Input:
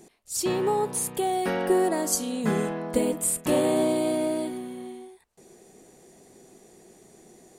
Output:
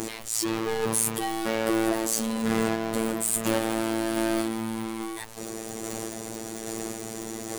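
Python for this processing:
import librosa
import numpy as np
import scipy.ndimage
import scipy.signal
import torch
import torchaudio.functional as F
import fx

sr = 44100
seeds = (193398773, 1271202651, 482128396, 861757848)

y = fx.chopper(x, sr, hz=1.2, depth_pct=60, duty_pct=30)
y = fx.power_curve(y, sr, exponent=0.35)
y = fx.robotise(y, sr, hz=112.0)
y = y * librosa.db_to_amplitude(-4.5)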